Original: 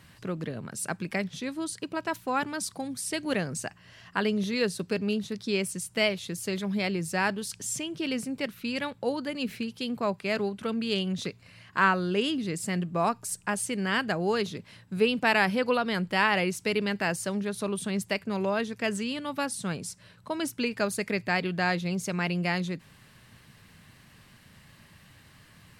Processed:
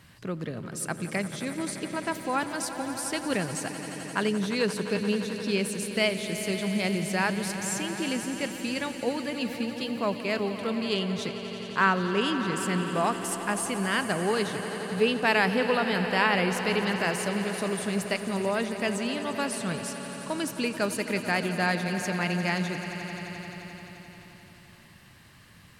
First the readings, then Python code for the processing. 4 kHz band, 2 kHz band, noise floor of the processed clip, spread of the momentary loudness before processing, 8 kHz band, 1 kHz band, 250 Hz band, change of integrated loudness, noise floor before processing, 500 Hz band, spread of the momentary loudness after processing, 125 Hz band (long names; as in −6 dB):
+1.5 dB, +1.0 dB, −52 dBFS, 9 LU, +1.0 dB, +1.0 dB, +1.0 dB, +1.0 dB, −56 dBFS, +1.5 dB, 10 LU, +1.0 dB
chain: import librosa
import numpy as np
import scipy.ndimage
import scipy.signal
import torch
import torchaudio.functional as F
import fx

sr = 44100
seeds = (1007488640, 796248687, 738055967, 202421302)

y = fx.echo_swell(x, sr, ms=87, loudest=5, wet_db=-14.5)